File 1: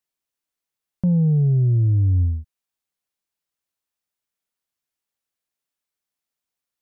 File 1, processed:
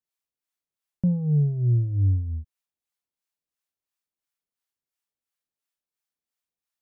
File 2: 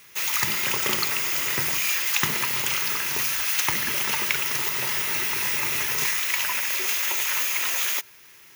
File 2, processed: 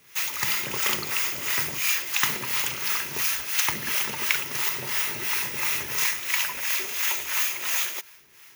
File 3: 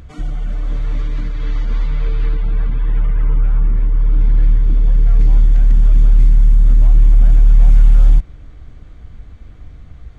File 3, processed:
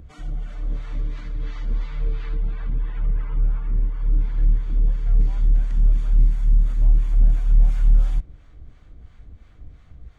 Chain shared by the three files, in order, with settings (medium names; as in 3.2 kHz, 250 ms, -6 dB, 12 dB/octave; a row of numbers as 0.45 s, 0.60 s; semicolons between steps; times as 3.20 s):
harmonic tremolo 2.9 Hz, depth 70%, crossover 640 Hz; normalise loudness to -24 LUFS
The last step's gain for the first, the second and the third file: -1.5 dB, +1.0 dB, -5.0 dB